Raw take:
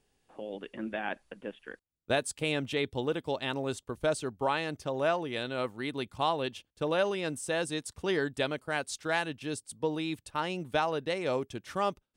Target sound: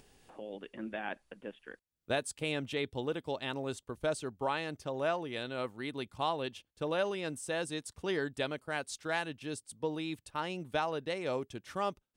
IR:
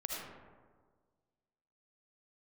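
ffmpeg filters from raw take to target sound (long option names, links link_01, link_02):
-af "acompressor=mode=upward:threshold=-45dB:ratio=2.5,volume=-4dB"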